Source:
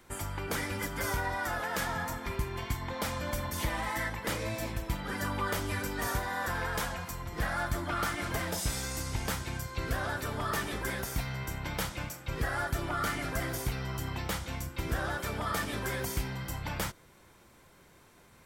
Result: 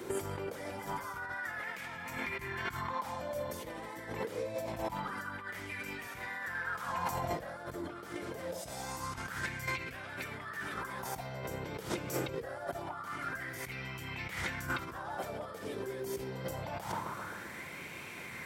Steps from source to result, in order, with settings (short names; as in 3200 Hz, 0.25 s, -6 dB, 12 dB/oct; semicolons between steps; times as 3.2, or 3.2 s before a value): HPF 130 Hz 12 dB/oct; low shelf 170 Hz +5.5 dB; tape echo 0.133 s, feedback 87%, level -18 dB, low-pass 1400 Hz; negative-ratio compressor -45 dBFS, ratio -1; LFO bell 0.25 Hz 400–2400 Hz +15 dB